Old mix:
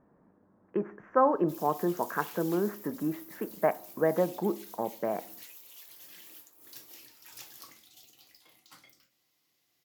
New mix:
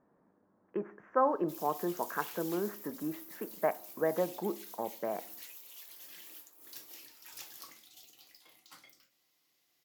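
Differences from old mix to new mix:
speech −3.5 dB
master: add low-shelf EQ 160 Hz −9.5 dB

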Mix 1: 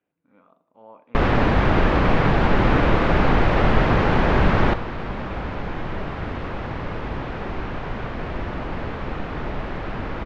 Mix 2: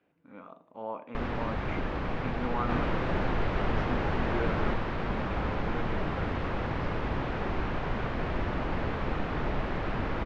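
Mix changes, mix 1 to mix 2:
speech +11.0 dB
first sound −11.0 dB
reverb: off

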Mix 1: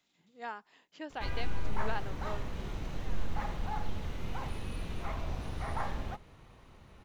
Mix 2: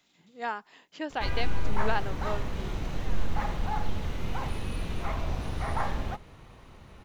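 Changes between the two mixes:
speech +8.0 dB
background +5.5 dB

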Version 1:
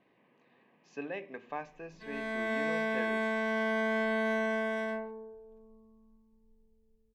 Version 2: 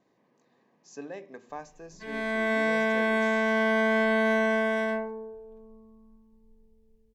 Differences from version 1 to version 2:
speech: remove low-pass with resonance 2,700 Hz, resonance Q 3
background +6.5 dB

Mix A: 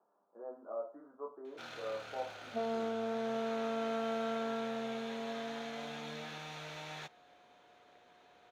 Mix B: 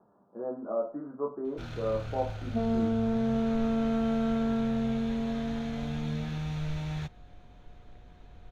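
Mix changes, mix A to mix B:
speech +7.5 dB
master: remove high-pass filter 490 Hz 12 dB per octave

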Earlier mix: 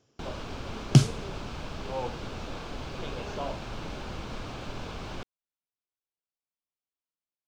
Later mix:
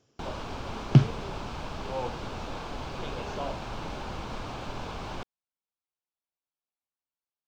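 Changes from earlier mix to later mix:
first sound: add parametric band 890 Hz +5.5 dB 0.82 octaves
second sound: add low-pass filter 2,300 Hz 12 dB per octave

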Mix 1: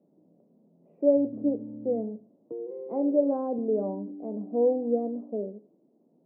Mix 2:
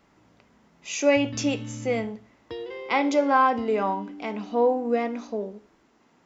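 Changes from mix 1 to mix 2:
speech: remove high-frequency loss of the air 300 metres
master: remove elliptic band-pass filter 160–610 Hz, stop band 80 dB

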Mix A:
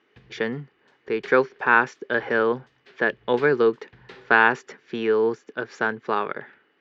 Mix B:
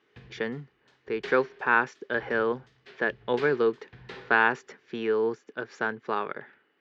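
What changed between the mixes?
speech −5.0 dB
background: send +7.0 dB

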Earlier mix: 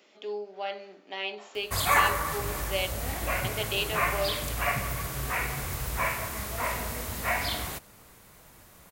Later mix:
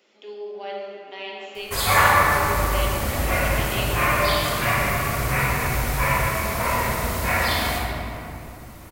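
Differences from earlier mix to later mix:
speech −4.0 dB
reverb: on, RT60 2.8 s

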